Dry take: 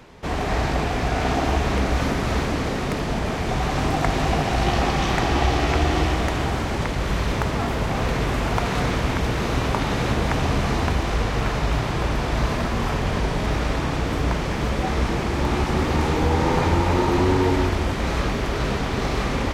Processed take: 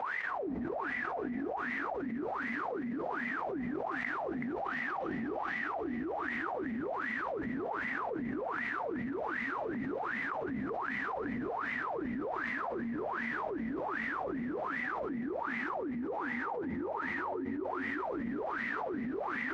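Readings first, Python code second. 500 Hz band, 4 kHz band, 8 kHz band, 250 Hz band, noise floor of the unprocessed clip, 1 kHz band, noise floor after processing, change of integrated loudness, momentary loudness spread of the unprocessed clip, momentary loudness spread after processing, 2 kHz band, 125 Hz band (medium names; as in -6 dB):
-12.5 dB, -26.0 dB, under -30 dB, -12.0 dB, -25 dBFS, -12.0 dB, -38 dBFS, -13.0 dB, 4 LU, 2 LU, -7.5 dB, -28.5 dB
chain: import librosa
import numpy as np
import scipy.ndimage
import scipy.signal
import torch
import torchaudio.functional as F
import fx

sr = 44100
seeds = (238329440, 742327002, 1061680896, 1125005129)

y = fx.wah_lfo(x, sr, hz=1.3, low_hz=230.0, high_hz=2000.0, q=20.0)
y = y + 10.0 ** (-11.0 / 20.0) * np.pad(y, (int(377 * sr / 1000.0), 0))[:len(y)]
y = fx.env_flatten(y, sr, amount_pct=100)
y = y * librosa.db_to_amplitude(-6.0)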